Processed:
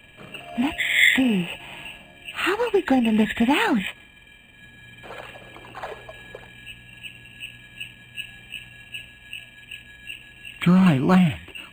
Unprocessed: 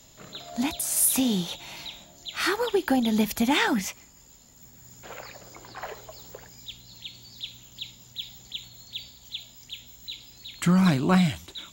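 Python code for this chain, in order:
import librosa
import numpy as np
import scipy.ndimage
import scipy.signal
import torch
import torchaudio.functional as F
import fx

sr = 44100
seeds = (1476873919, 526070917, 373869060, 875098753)

y = fx.freq_compress(x, sr, knee_hz=2400.0, ratio=4.0)
y = np.interp(np.arange(len(y)), np.arange(len(y))[::8], y[::8])
y = y * librosa.db_to_amplitude(4.0)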